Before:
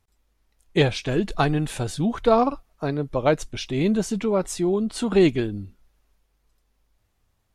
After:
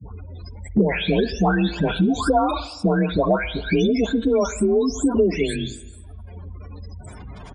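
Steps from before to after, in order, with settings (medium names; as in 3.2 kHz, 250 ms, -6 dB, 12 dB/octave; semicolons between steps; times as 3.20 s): delay that grows with frequency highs late, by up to 548 ms; resampled via 22.05 kHz; frequency shift +36 Hz; in parallel at +1.5 dB: compression, threshold -29 dBFS, peak gain reduction 15 dB; on the sum: spectral gate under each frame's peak -25 dB strong; rippled EQ curve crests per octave 1.7, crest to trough 7 dB; on a send at -16.5 dB: reverberation RT60 0.70 s, pre-delay 50 ms; on the sum: three bands compressed up and down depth 100%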